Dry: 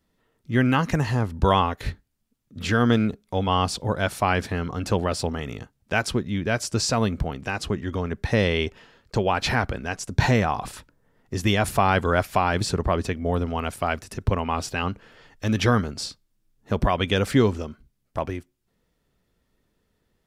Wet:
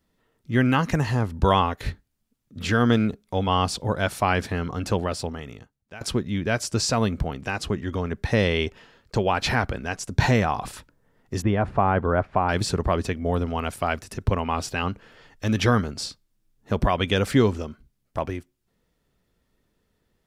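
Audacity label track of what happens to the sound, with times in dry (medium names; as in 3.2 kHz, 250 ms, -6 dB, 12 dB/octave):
4.800000	6.010000	fade out, to -20.5 dB
11.420000	12.490000	low-pass 1.3 kHz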